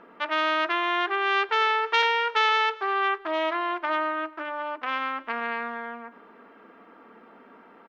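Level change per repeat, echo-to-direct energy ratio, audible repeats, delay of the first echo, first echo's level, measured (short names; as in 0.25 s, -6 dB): -10.0 dB, -22.0 dB, 2, 0.241 s, -22.5 dB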